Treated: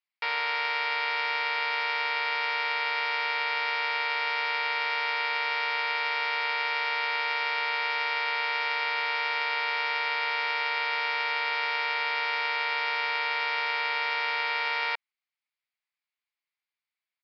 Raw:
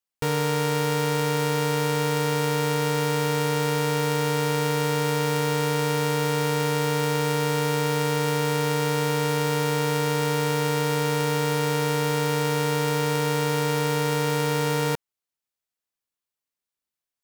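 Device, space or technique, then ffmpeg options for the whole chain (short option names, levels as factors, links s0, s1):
musical greeting card: -af "aresample=11025,aresample=44100,highpass=f=750:w=0.5412,highpass=f=750:w=1.3066,equalizer=f=2200:t=o:w=0.45:g=10.5,volume=0.841"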